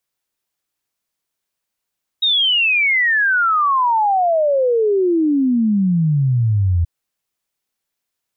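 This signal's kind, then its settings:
exponential sine sweep 3,800 Hz → 82 Hz 4.63 s −12.5 dBFS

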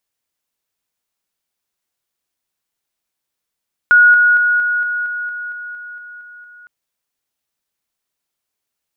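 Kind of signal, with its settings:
level staircase 1,450 Hz −5 dBFS, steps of −3 dB, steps 12, 0.23 s 0.00 s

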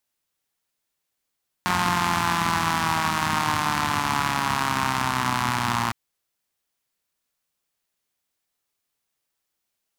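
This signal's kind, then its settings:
pulse-train model of a four-cylinder engine, changing speed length 4.26 s, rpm 5,400, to 3,500, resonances 110/200/970 Hz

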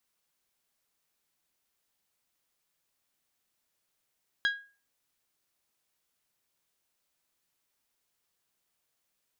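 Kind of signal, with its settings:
struck glass bell, lowest mode 1,640 Hz, decay 0.36 s, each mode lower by 6.5 dB, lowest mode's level −21.5 dB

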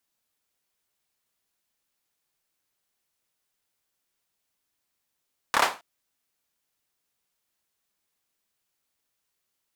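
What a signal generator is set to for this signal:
synth clap length 0.27 s, apart 27 ms, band 950 Hz, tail 0.29 s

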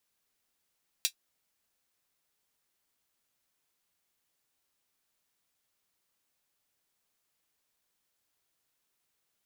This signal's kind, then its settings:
closed synth hi-hat, high-pass 3,300 Hz, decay 0.09 s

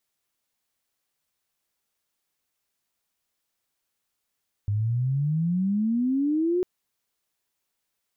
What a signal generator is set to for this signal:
glide logarithmic 100 Hz → 370 Hz −22 dBFS → −20.5 dBFS 1.95 s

